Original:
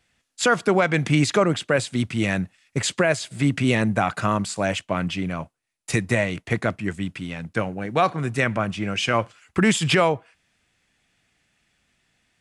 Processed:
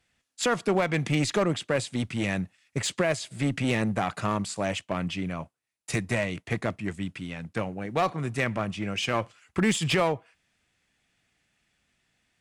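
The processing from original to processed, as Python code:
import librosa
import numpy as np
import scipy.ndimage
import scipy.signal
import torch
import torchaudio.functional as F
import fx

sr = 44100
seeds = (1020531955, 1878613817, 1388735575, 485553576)

y = fx.dynamic_eq(x, sr, hz=1500.0, q=6.3, threshold_db=-43.0, ratio=4.0, max_db=-6)
y = fx.clip_asym(y, sr, top_db=-18.0, bottom_db=-9.5)
y = y * librosa.db_to_amplitude(-4.5)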